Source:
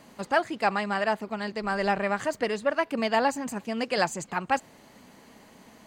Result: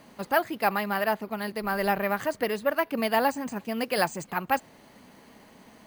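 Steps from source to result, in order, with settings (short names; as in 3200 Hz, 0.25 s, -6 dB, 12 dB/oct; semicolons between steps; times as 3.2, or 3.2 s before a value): careless resampling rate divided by 3×, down filtered, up hold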